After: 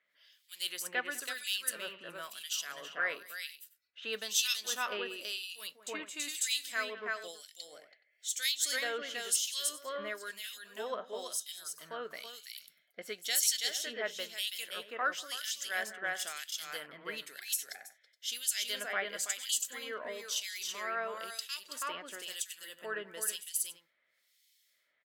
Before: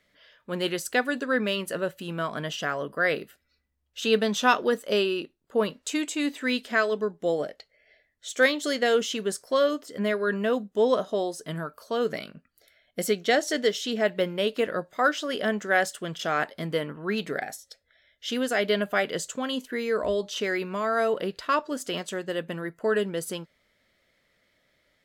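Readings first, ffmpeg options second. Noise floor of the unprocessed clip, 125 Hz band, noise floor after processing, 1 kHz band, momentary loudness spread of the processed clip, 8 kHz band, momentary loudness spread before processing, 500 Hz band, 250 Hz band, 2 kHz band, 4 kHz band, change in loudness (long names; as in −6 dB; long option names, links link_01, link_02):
−72 dBFS, below −25 dB, −75 dBFS, −12.5 dB, 13 LU, +4.5 dB, 9 LU, −18.0 dB, −24.5 dB, −8.5 dB, −2.5 dB, −8.5 dB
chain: -filter_complex "[0:a]aderivative,aecho=1:1:196|328|422:0.106|0.668|0.158,acrossover=split=2400[link_01][link_02];[link_01]aeval=exprs='val(0)*(1-1/2+1/2*cos(2*PI*1*n/s))':channel_layout=same[link_03];[link_02]aeval=exprs='val(0)*(1-1/2-1/2*cos(2*PI*1*n/s))':channel_layout=same[link_04];[link_03][link_04]amix=inputs=2:normalize=0,volume=7dB"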